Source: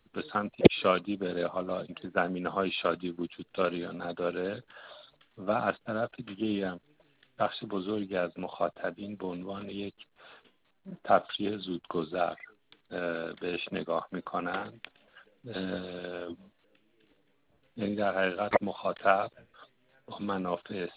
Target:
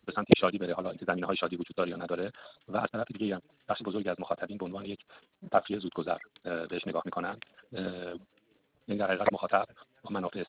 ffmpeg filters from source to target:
-af "highpass=f=41:w=0.5412,highpass=f=41:w=1.3066,atempo=2"

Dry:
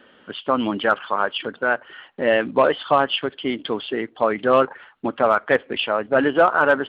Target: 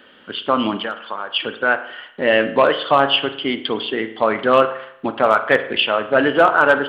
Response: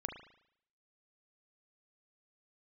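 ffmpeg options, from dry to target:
-filter_complex "[0:a]highshelf=f=2.5k:g=9,asplit=3[a][b][c];[a]afade=t=out:st=0.76:d=0.02[d];[b]acompressor=threshold=-25dB:ratio=6,afade=t=in:st=0.76:d=0.02,afade=t=out:st=1.32:d=0.02[e];[c]afade=t=in:st=1.32:d=0.02[f];[d][e][f]amix=inputs=3:normalize=0,asplit=2[g][h];[1:a]atrim=start_sample=2205[i];[h][i]afir=irnorm=-1:irlink=0,volume=0.5dB[j];[g][j]amix=inputs=2:normalize=0,volume=-4dB"

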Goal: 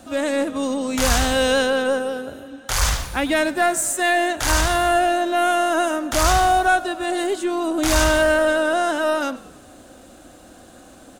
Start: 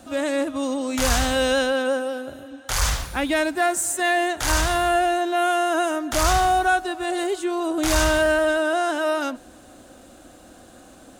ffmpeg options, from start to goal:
-filter_complex "[0:a]asplit=5[a][b][c][d][e];[b]adelay=101,afreqshift=-48,volume=-19dB[f];[c]adelay=202,afreqshift=-96,volume=-25dB[g];[d]adelay=303,afreqshift=-144,volume=-31dB[h];[e]adelay=404,afreqshift=-192,volume=-37.1dB[i];[a][f][g][h][i]amix=inputs=5:normalize=0,aeval=exprs='0.447*(cos(1*acos(clip(val(0)/0.447,-1,1)))-cos(1*PI/2))+0.0141*(cos(4*acos(clip(val(0)/0.447,-1,1)))-cos(4*PI/2))+0.01*(cos(5*acos(clip(val(0)/0.447,-1,1)))-cos(5*PI/2))+0.00891*(cos(7*acos(clip(val(0)/0.447,-1,1)))-cos(7*PI/2))':c=same,volume=2dB"

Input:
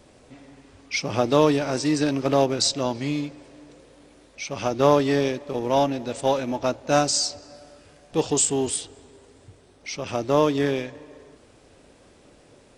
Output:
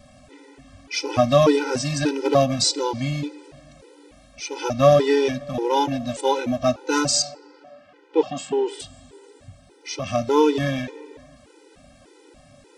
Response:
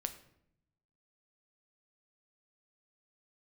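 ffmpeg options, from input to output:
-filter_complex "[0:a]asettb=1/sr,asplit=3[a][b][c];[a]atrim=end=7.224[d];[b]atrim=start=7.22:end=8.8,asetpts=PTS-STARTPTS,afade=t=in:d=0.004:c=qsin,afade=t=out:st=1.576:d=0.004:c=qsin,highpass=270,lowpass=2.5k[e];[c]atrim=start=8.796[f];[d][e]acrossfade=d=0.004:c1=hsin:c2=qsin[g];[g][f]acrossfade=d=0.004:c1=qsin:c2=hsin,asplit=2[h][i];[1:a]atrim=start_sample=2205[j];[i][j]afir=irnorm=-1:irlink=0,volume=-6.5dB[k];[h][k]amix=inputs=2:normalize=0,afftfilt=real='re*gt(sin(2*PI*1.7*pts/sr)*(1-2*mod(floor(b*sr/1024/260),2)),0)':imag='im*gt(sin(2*PI*1.7*pts/sr)*(1-2*mod(floor(b*sr/1024/260),2)),0)':win_size=1024:overlap=0.75,volume=2.5dB"

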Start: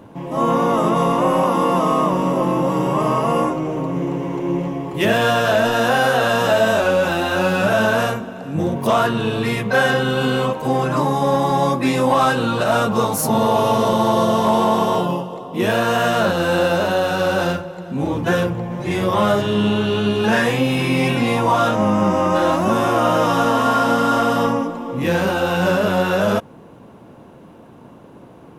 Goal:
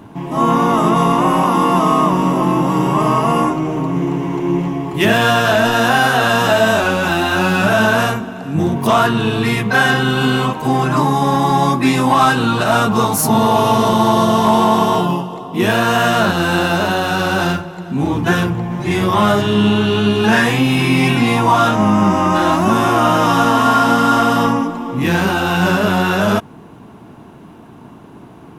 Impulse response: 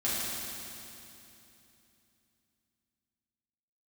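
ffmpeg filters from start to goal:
-af "equalizer=f=530:w=5:g=-13,volume=5dB"

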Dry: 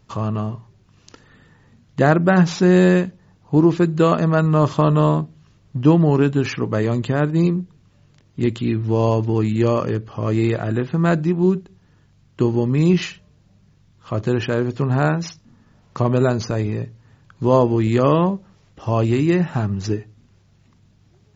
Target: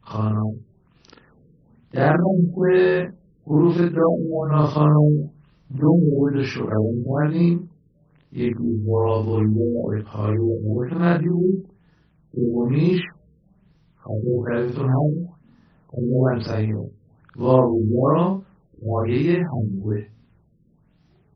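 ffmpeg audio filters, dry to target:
-af "afftfilt=real='re':imag='-im':win_size=4096:overlap=0.75,afftfilt=real='re*lt(b*sr/1024,510*pow(6100/510,0.5+0.5*sin(2*PI*1.1*pts/sr)))':imag='im*lt(b*sr/1024,510*pow(6100/510,0.5+0.5*sin(2*PI*1.1*pts/sr)))':win_size=1024:overlap=0.75,volume=2.5dB"

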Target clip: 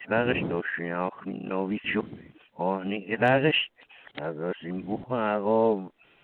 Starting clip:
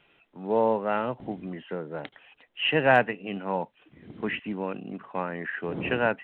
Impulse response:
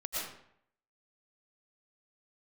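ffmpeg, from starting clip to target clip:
-filter_complex "[0:a]areverse,acrossover=split=490|3000[a][b][c];[b]acompressor=threshold=-31dB:ratio=2[d];[a][d][c]amix=inputs=3:normalize=0,volume=3dB"

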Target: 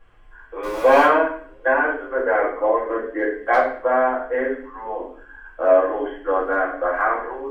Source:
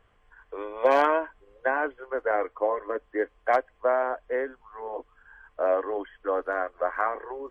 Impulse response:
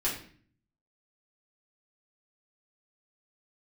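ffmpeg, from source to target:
-filter_complex "[0:a]asettb=1/sr,asplit=3[a][b][c];[a]atrim=end=0.634[d];[b]atrim=start=0.63:end=1.05,asetpts=PTS-STARTPTS,afade=t=in:d=0.004:c=qsin,afade=t=out:st=0.416:d=0.004:c=qsin,aeval=exprs='val(0)+0.5*0.0158*sgn(val(0))':c=same[e];[c]atrim=start=1.046[f];[d][e]acrossfade=d=0.004:c1=hsin:c2=qsin[g];[g][f]acrossfade=d=0.004:c1=qsin:c2=hsin[h];[1:a]atrim=start_sample=2205,asetrate=40131,aresample=44100[i];[h][i]afir=irnorm=-1:irlink=0"

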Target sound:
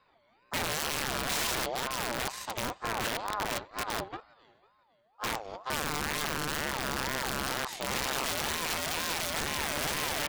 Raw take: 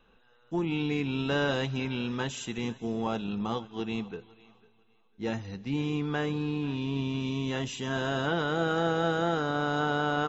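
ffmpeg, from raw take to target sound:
-af "aeval=exprs='0.141*(cos(1*acos(clip(val(0)/0.141,-1,1)))-cos(1*PI/2))+0.00282*(cos(3*acos(clip(val(0)/0.141,-1,1)))-cos(3*PI/2))+0.0316*(cos(5*acos(clip(val(0)/0.141,-1,1)))-cos(5*PI/2))+0.0631*(cos(8*acos(clip(val(0)/0.141,-1,1)))-cos(8*PI/2))':c=same,aeval=exprs='(mod(5.62*val(0)+1,2)-1)/5.62':c=same,aeval=exprs='val(0)*sin(2*PI*820*n/s+820*0.3/2.1*sin(2*PI*2.1*n/s))':c=same,volume=-7dB"

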